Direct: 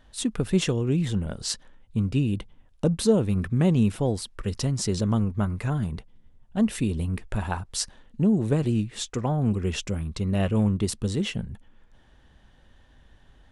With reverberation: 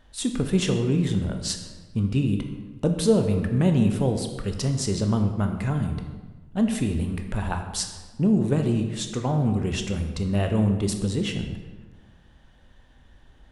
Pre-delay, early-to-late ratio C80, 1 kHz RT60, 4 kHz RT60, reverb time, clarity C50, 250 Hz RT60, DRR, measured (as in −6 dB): 18 ms, 8.5 dB, 1.3 s, 0.90 s, 1.3 s, 7.0 dB, 1.6 s, 5.0 dB